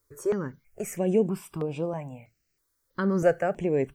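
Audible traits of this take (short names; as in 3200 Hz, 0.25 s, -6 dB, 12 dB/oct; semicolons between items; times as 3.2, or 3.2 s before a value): a quantiser's noise floor 12-bit, dither triangular; notches that jump at a steady rate 3.1 Hz 740–6400 Hz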